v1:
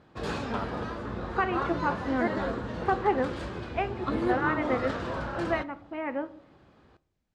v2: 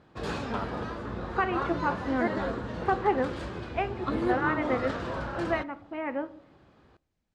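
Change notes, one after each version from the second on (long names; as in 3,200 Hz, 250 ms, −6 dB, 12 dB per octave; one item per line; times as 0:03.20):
background: send −6.5 dB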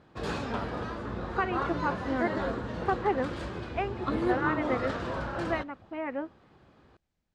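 first voice: send off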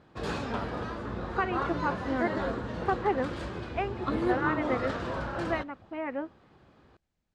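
nothing changed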